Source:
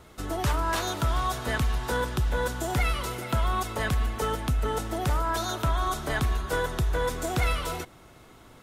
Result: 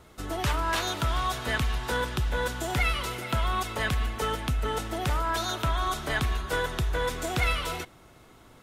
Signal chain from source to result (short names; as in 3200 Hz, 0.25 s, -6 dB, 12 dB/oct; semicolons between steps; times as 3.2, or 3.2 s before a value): dynamic EQ 2700 Hz, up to +6 dB, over -45 dBFS, Q 0.79; gain -2 dB